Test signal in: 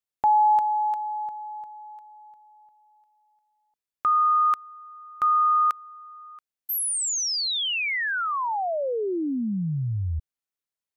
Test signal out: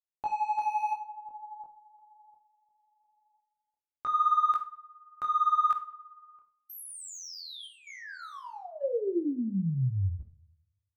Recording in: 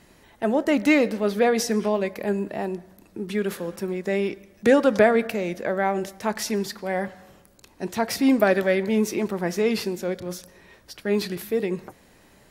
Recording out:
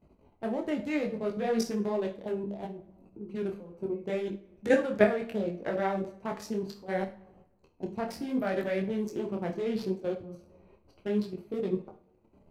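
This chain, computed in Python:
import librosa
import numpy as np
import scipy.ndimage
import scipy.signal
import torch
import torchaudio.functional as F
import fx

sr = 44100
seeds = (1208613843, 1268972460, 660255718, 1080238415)

p1 = fx.wiener(x, sr, points=25)
p2 = fx.peak_eq(p1, sr, hz=77.0, db=7.0, octaves=0.29)
p3 = fx.level_steps(p2, sr, step_db=14)
p4 = p3 + fx.echo_filtered(p3, sr, ms=100, feedback_pct=54, hz=4400.0, wet_db=-22.5, dry=0)
p5 = fx.rev_schroeder(p4, sr, rt60_s=0.31, comb_ms=31, drr_db=9.5)
p6 = fx.detune_double(p5, sr, cents=24)
y = F.gain(torch.from_numpy(p6), 1.5).numpy()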